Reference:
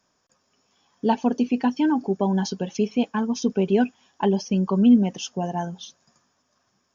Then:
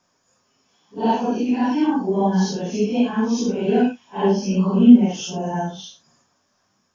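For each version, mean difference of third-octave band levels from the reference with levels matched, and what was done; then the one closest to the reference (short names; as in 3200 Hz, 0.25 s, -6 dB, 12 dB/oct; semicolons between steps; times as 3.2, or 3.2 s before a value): 4.5 dB: phase scrambler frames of 0.2 s; gain +3 dB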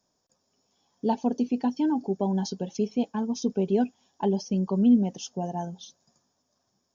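1.5 dB: band shelf 1800 Hz -8.5 dB; gain -4 dB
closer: second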